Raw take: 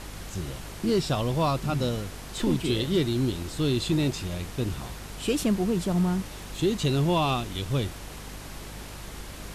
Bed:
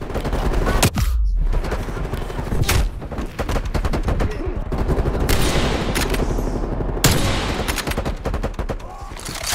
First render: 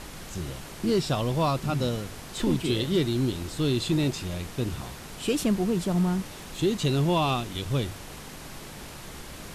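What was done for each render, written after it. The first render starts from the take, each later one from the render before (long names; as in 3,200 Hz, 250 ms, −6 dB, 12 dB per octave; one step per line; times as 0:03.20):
hum removal 50 Hz, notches 2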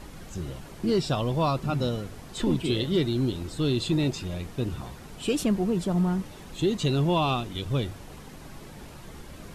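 broadband denoise 8 dB, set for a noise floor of −42 dBFS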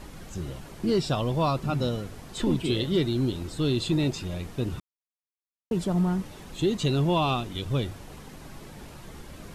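0:04.80–0:05.71: silence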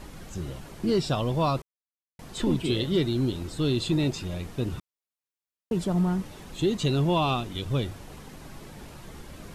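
0:01.62–0:02.19: silence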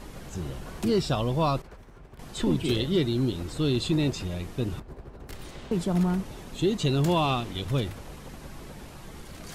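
mix in bed −24 dB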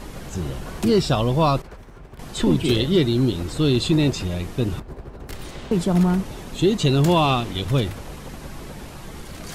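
level +6.5 dB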